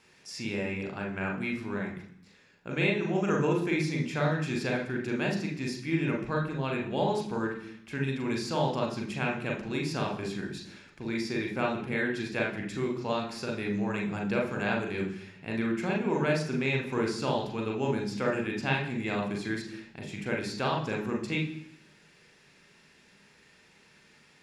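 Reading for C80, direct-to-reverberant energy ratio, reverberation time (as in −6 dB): 10.5 dB, −0.5 dB, 0.65 s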